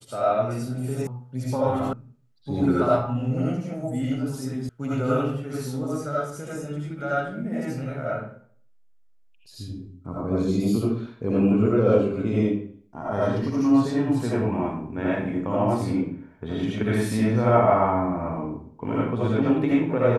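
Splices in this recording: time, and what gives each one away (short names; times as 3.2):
1.07 sound cut off
1.93 sound cut off
4.69 sound cut off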